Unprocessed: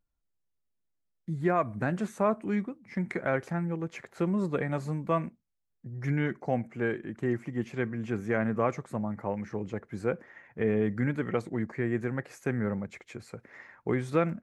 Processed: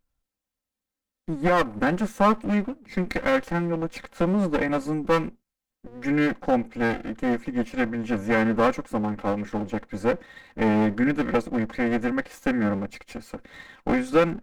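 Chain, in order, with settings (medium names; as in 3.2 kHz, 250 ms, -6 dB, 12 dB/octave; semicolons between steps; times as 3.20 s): comb filter that takes the minimum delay 3.8 ms; trim +6.5 dB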